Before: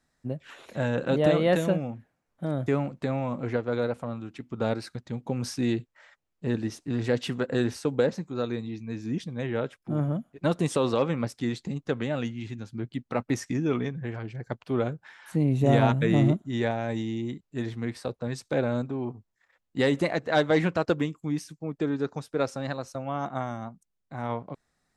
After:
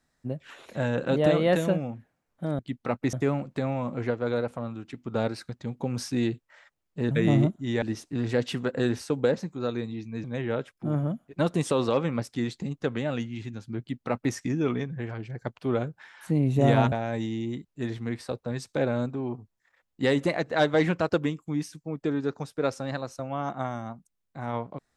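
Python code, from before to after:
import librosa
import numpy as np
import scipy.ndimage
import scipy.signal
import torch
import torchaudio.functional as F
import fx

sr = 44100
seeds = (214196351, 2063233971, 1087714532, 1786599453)

y = fx.edit(x, sr, fx.cut(start_s=8.99, length_s=0.3),
    fx.duplicate(start_s=12.85, length_s=0.54, to_s=2.59),
    fx.move(start_s=15.97, length_s=0.71, to_s=6.57), tone=tone)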